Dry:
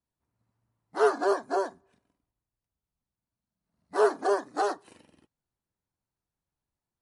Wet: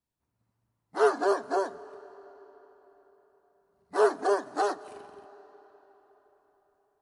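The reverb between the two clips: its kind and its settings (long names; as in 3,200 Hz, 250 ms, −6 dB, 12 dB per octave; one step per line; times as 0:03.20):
comb and all-pass reverb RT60 4.5 s, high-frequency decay 0.75×, pre-delay 115 ms, DRR 18.5 dB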